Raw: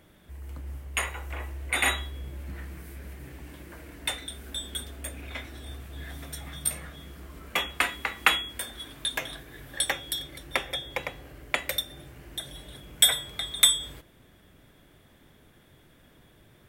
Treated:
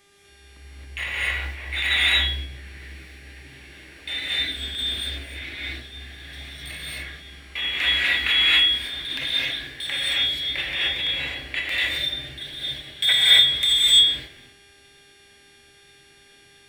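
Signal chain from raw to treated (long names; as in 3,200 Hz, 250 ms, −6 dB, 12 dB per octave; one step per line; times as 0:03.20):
running median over 3 samples
flat-topped bell 2,800 Hz +14.5 dB
transient designer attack −7 dB, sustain +11 dB
hum with harmonics 400 Hz, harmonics 29, −48 dBFS −3 dB per octave
reverb whose tail is shaped and stops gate 290 ms rising, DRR −5.5 dB
level −12.5 dB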